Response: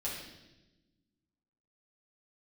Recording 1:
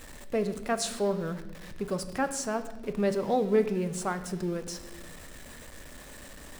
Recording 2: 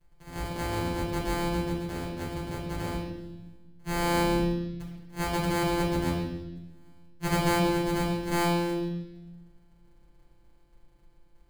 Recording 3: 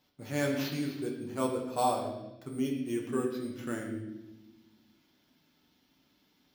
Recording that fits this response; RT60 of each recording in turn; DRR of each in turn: 2; 1.1, 1.0, 1.0 seconds; 8.5, −7.0, −1.0 decibels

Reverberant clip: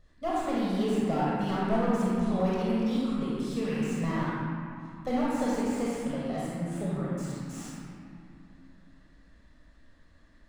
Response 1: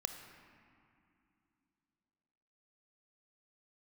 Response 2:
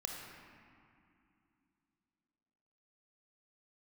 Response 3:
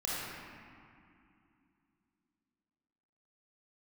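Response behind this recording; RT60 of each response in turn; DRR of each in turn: 3; 2.7, 2.6, 2.6 seconds; 6.0, 0.0, −7.5 decibels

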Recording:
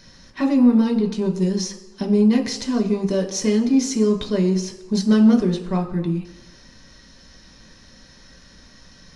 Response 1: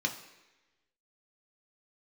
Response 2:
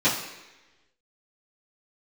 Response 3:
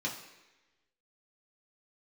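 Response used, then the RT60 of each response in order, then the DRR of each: 1; 1.1, 1.1, 1.1 seconds; 2.0, −12.5, −4.0 decibels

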